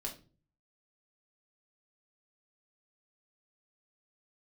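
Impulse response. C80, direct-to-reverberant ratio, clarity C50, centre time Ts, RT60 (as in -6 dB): 16.5 dB, -1.0 dB, 11.0 dB, 17 ms, 0.35 s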